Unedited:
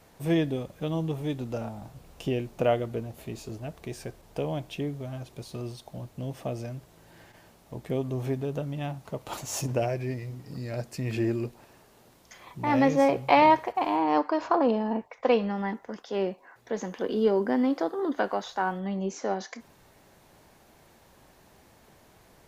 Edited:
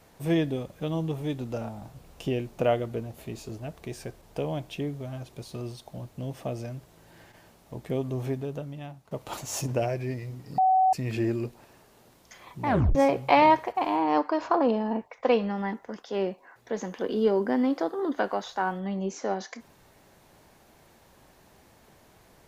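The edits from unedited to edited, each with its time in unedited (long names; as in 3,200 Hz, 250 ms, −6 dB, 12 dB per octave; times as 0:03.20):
0:08.21–0:09.11: fade out, to −13.5 dB
0:10.58–0:10.93: beep over 754 Hz −17.5 dBFS
0:12.67: tape stop 0.28 s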